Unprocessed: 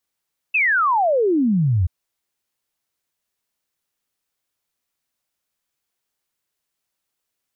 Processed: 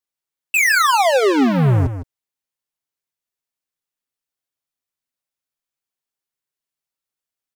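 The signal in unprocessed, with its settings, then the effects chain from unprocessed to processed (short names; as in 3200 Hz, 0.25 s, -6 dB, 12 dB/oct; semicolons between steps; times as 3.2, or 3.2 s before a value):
log sweep 2700 Hz -> 82 Hz 1.33 s -14.5 dBFS
sample leveller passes 5; comb 7.5 ms, depth 36%; on a send: echo 0.157 s -11 dB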